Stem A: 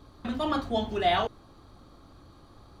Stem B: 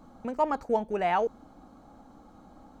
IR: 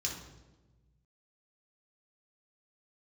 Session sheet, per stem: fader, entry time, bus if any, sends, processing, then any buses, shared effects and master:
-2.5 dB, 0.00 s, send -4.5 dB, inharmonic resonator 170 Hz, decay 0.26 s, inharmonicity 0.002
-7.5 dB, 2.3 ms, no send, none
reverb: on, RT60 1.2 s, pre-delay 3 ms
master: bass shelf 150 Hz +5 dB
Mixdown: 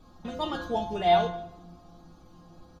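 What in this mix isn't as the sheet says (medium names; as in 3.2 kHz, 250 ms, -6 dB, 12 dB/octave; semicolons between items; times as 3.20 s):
stem A -2.5 dB -> +5.5 dB; stem B: polarity flipped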